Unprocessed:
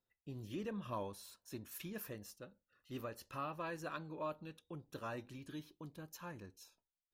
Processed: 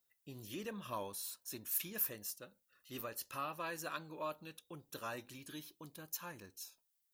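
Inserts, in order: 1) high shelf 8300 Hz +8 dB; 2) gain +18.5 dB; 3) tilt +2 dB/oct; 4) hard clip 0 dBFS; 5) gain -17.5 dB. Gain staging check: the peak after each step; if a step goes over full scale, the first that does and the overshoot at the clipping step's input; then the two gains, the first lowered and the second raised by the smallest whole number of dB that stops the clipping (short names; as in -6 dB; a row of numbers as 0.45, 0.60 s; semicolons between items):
-29.5, -11.0, -4.0, -4.0, -21.5 dBFS; no overload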